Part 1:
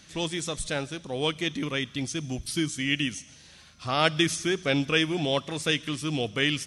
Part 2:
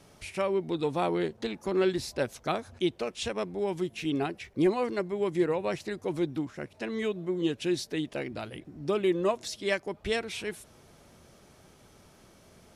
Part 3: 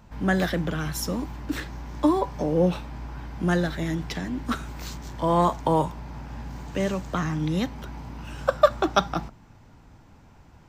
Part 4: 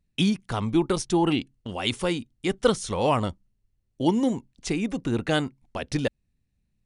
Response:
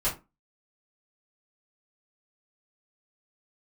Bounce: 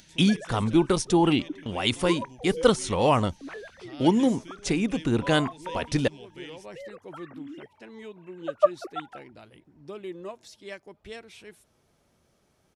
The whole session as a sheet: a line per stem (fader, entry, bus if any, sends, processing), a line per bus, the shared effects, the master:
-19.0 dB, 0.00 s, no send, upward compressor, threshold -24 dBFS; peaking EQ 1.1 kHz -12.5 dB 0.4 oct
-11.5 dB, 1.00 s, no send, auto duck -11 dB, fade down 1.45 s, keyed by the fourth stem
-10.5 dB, 0.00 s, no send, formants replaced by sine waves
+1.5 dB, 0.00 s, no send, none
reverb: none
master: none

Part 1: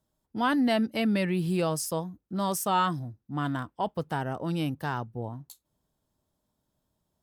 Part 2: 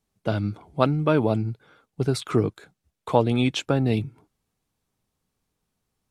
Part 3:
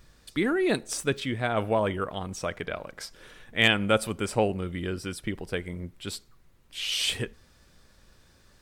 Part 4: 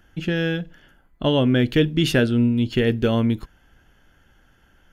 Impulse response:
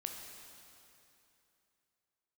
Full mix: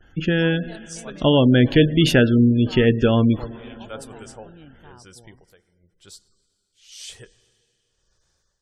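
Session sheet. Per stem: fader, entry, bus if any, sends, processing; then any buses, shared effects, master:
-17.0 dB, 0.00 s, no send, none
-18.0 dB, 0.25 s, send -4.5 dB, high-pass 330 Hz 12 dB/octave; treble shelf 2.2 kHz -7.5 dB; saturation -16 dBFS, distortion -13 dB
-10.5 dB, 0.00 s, send -11 dB, fifteen-band graphic EQ 100 Hz -4 dB, 250 Hz -12 dB, 2.5 kHz -6 dB, 6.3 kHz +9 dB; tremolo 0.97 Hz, depth 90%
+1.0 dB, 0.00 s, send -7.5 dB, gate with hold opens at -49 dBFS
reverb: on, RT60 2.9 s, pre-delay 13 ms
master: spectral gate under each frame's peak -30 dB strong

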